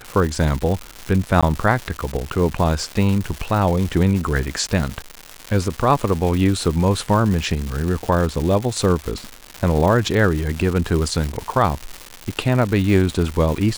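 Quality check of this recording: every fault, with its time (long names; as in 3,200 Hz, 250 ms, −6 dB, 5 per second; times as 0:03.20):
surface crackle 320 per second −23 dBFS
0:01.41–0:01.43: drop-out 16 ms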